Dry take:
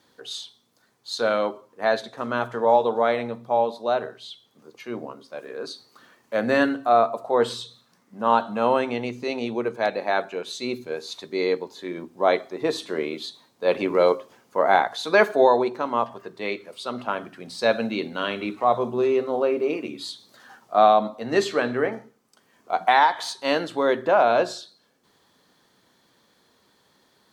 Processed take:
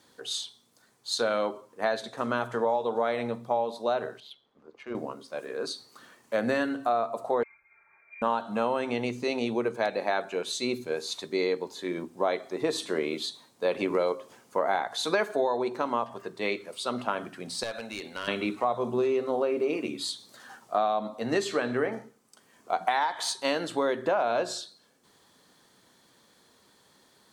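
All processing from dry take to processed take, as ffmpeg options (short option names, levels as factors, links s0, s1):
-filter_complex "[0:a]asettb=1/sr,asplit=3[s0][s1][s2];[s0]atrim=end=4.204[s3];[s1]atrim=start=4.2:end=4.95,asetpts=PTS-STARTPTS,afade=t=in:d=0.004:c=qsin,afade=t=out:st=0.746:d=0.004:c=qsin,equalizer=f=78:w=0.5:g=-11,tremolo=f=140:d=0.4,adynamicsmooth=sensitivity=3:basefreq=2300[s4];[s2]atrim=start=4.946[s5];[s3][s4]acrossfade=d=0.004:c1=hsin:c2=qsin[s6];[s6][s5]acrossfade=d=0.004:c1=qsin:c2=hsin,asettb=1/sr,asplit=3[s7][s8][s9];[s7]atrim=end=7.434[s10];[s8]atrim=start=7.43:end=8.22,asetpts=PTS-STARTPTS,afade=t=in:d=0.004:c=qsin,afade=t=out:st=0.786:d=0.004:c=qsin,acompressor=threshold=0.00447:ratio=8:attack=3.2:release=140:knee=1:detection=peak,aecho=1:1:4.1:0.75,atrim=end_sample=34839,lowpass=f=2200:t=q:w=0.5098,lowpass=f=2200:t=q:w=0.6013,lowpass=f=2200:t=q:w=0.9,lowpass=f=2200:t=q:w=2.563,afreqshift=-2600[s11];[s9]atrim=start=8.216[s12];[s10][s11]acrossfade=d=0.004:c1=hsin:c2=qsin[s13];[s13][s12]acrossfade=d=0.004:c1=qsin:c2=hsin,asettb=1/sr,asplit=3[s14][s15][s16];[s14]atrim=end=17.634[s17];[s15]atrim=start=17.63:end=18.28,asetpts=PTS-STARTPTS,afade=t=in:d=0.004:c=qsin,afade=t=out:st=0.646:d=0.004:c=qsin,acompressor=threshold=0.0447:ratio=4:attack=3.2:release=140:knee=1:detection=peak,equalizer=f=180:t=o:w=2.6:g=-12.5,aeval=exprs='clip(val(0),-1,0.0237)':c=same[s18];[s16]atrim=start=18.276[s19];[s17][s18]acrossfade=d=0.004:c1=hsin:c2=qsin[s20];[s20][s19]acrossfade=d=0.004:c1=qsin:c2=hsin,equalizer=f=8700:t=o:w=0.84:g=6.5,acompressor=threshold=0.0708:ratio=6"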